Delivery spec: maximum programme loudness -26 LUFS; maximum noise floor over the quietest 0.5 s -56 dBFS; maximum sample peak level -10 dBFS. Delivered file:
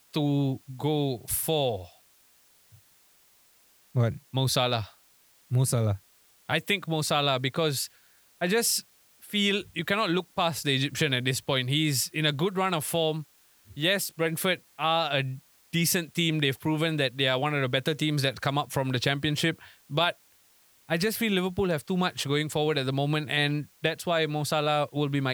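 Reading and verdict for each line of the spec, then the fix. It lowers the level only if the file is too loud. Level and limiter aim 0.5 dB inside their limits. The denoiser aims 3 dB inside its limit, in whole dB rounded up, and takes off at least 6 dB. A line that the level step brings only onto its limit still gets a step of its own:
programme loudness -27.0 LUFS: pass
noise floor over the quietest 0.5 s -61 dBFS: pass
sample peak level -9.0 dBFS: fail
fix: peak limiter -10.5 dBFS

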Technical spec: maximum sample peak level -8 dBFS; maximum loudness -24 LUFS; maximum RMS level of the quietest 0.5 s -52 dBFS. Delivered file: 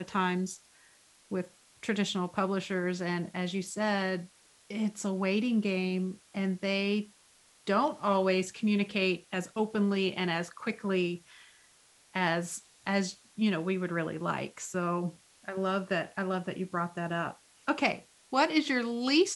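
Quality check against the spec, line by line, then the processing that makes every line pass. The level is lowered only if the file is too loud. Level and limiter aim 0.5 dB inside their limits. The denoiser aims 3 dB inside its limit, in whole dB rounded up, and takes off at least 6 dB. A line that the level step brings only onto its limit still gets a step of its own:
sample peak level -11.0 dBFS: pass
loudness -31.5 LUFS: pass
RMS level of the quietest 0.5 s -62 dBFS: pass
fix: none needed

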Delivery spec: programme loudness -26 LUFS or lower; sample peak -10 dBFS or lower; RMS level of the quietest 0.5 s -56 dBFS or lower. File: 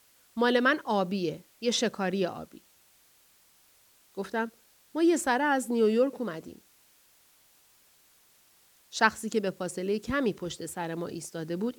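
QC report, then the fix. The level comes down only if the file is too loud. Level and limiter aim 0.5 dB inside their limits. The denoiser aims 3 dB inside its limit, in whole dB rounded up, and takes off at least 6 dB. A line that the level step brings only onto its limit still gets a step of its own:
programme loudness -29.0 LUFS: pass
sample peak -7.0 dBFS: fail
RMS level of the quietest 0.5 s -63 dBFS: pass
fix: peak limiter -10.5 dBFS

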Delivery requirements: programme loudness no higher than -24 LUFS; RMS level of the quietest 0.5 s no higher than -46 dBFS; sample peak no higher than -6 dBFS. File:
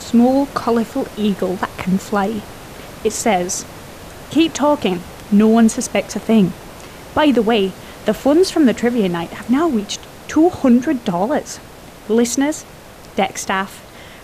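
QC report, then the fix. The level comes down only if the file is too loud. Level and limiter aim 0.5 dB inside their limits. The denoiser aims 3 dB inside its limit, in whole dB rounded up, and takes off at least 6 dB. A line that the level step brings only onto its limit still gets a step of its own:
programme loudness -17.0 LUFS: fail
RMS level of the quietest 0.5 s -38 dBFS: fail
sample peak -4.0 dBFS: fail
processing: noise reduction 6 dB, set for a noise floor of -38 dBFS; trim -7.5 dB

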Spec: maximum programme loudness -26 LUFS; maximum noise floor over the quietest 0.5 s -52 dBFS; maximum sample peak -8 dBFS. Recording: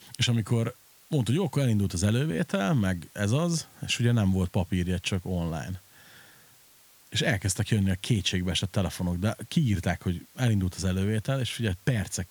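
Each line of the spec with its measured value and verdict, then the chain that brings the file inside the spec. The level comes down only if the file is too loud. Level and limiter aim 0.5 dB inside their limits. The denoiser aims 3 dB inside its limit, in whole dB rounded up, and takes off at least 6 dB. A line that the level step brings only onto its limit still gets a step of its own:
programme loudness -27.5 LUFS: pass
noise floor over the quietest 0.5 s -57 dBFS: pass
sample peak -10.5 dBFS: pass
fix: none needed

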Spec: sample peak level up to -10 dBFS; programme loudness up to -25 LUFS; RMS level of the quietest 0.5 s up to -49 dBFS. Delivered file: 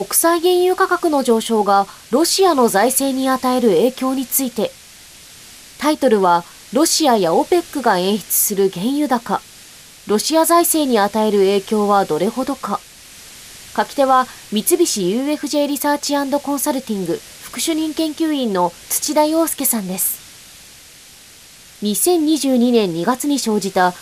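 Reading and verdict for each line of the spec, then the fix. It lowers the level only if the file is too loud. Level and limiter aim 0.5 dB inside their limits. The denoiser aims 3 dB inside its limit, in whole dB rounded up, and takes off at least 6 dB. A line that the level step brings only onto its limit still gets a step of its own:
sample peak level -3.0 dBFS: fail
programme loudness -16.5 LUFS: fail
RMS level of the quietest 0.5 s -43 dBFS: fail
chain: trim -9 dB

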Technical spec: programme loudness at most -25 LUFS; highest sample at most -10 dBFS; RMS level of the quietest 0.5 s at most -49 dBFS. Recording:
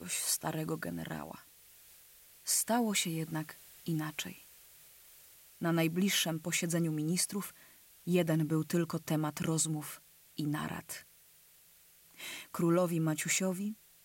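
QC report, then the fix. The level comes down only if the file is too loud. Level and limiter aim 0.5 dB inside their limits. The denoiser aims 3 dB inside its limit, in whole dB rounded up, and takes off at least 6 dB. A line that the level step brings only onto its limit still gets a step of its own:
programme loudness -33.5 LUFS: pass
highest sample -19.0 dBFS: pass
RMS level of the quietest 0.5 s -62 dBFS: pass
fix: none needed

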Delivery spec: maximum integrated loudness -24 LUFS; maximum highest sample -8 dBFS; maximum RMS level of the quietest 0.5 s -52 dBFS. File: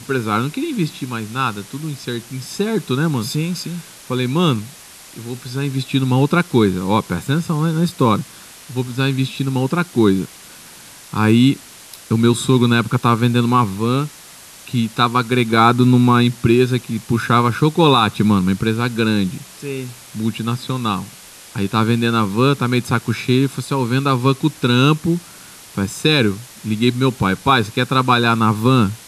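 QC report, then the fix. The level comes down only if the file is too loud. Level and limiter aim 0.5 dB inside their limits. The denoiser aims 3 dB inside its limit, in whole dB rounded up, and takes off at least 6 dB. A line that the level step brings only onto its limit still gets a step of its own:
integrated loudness -17.5 LUFS: fail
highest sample -1.5 dBFS: fail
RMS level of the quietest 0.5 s -40 dBFS: fail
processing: noise reduction 8 dB, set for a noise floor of -40 dBFS; trim -7 dB

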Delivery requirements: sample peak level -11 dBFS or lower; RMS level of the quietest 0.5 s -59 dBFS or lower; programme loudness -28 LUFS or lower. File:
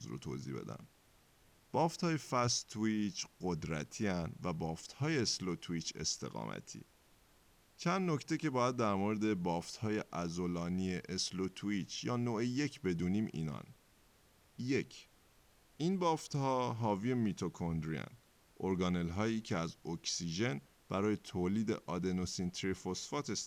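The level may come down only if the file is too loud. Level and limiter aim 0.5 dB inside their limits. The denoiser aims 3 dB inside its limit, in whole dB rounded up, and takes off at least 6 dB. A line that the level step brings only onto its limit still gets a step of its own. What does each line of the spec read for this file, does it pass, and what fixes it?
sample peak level -19.5 dBFS: pass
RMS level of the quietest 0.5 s -68 dBFS: pass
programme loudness -37.5 LUFS: pass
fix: none needed

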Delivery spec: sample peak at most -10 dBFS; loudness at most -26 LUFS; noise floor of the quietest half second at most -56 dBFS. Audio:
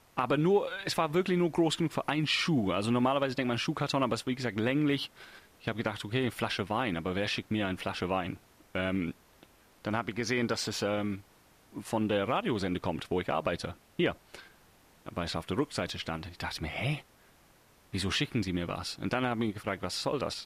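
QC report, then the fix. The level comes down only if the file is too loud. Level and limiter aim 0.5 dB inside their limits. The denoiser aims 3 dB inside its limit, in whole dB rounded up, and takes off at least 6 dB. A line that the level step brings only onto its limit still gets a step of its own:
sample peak -15.0 dBFS: pass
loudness -31.5 LUFS: pass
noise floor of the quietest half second -62 dBFS: pass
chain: none needed

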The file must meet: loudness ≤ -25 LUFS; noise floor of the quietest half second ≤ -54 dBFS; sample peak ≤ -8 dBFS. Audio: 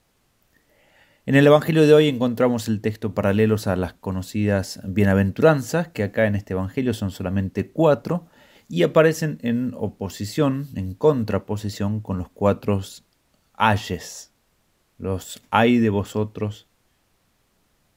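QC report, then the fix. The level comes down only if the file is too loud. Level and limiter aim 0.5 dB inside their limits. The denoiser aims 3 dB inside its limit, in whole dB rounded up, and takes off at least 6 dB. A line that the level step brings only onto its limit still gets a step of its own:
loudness -21.5 LUFS: fail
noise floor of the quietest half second -66 dBFS: pass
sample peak -2.0 dBFS: fail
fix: trim -4 dB; peak limiter -8.5 dBFS

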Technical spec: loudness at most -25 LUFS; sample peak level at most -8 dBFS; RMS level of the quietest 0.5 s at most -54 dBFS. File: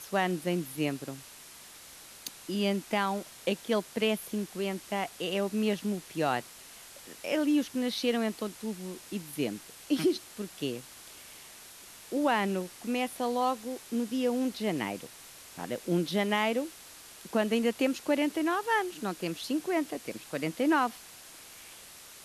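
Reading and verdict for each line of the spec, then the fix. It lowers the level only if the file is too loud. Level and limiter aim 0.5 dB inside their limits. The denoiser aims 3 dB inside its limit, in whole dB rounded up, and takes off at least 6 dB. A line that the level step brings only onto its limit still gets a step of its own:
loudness -31.5 LUFS: pass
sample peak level -15.5 dBFS: pass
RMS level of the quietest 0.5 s -50 dBFS: fail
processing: noise reduction 7 dB, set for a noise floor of -50 dBFS

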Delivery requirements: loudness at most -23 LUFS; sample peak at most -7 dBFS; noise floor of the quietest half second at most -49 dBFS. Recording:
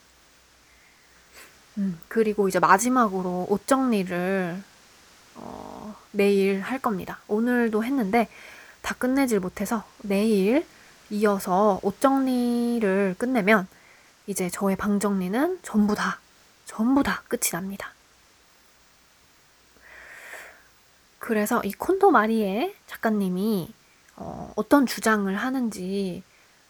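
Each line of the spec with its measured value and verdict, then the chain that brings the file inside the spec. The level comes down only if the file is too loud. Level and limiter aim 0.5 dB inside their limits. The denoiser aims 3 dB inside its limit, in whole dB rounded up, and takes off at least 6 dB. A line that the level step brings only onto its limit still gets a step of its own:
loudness -24.0 LUFS: pass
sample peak -2.5 dBFS: fail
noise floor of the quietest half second -58 dBFS: pass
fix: peak limiter -7.5 dBFS

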